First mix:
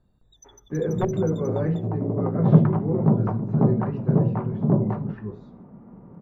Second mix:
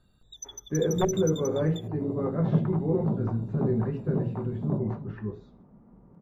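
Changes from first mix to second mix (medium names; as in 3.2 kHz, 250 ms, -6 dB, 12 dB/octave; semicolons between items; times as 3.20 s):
first sound +11.0 dB; second sound -9.5 dB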